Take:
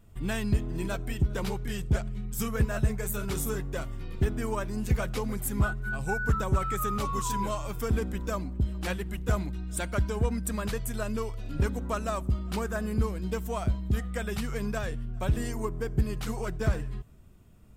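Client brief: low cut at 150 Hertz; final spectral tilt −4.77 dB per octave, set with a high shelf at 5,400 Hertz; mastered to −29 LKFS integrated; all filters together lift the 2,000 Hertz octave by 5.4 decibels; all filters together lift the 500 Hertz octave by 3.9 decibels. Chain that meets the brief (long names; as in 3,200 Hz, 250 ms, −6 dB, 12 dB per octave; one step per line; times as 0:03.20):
high-pass filter 150 Hz
parametric band 500 Hz +4.5 dB
parametric band 2,000 Hz +8.5 dB
high-shelf EQ 5,400 Hz −7.5 dB
level +2.5 dB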